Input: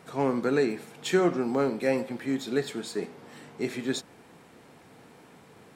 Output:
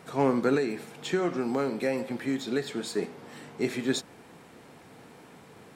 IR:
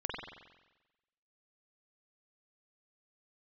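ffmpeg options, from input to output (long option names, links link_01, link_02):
-filter_complex "[0:a]asettb=1/sr,asplit=3[link_01][link_02][link_03];[link_01]atrim=end=0.554[link_04];[link_02]atrim=start=0.55:end=2.81,asetpts=PTS-STARTPTS,afade=type=in:duration=0.004:curve=qsin,afade=type=out:start_time=2.256:duration=0.004:curve=qsin,acrossover=split=1400|7100[link_05][link_06][link_07];[link_05]acompressor=threshold=-27dB:ratio=4[link_08];[link_06]acompressor=threshold=-39dB:ratio=4[link_09];[link_07]acompressor=threshold=-57dB:ratio=4[link_10];[link_08][link_09][link_10]amix=inputs=3:normalize=0[link_11];[link_03]atrim=start=2.806[link_12];[link_04][link_11]acrossfade=duration=0.004:curve1=hsin:curve2=qsin[link_13];[link_13][link_12]acrossfade=duration=0.004:curve1=qsin:curve2=hsin,volume=2dB"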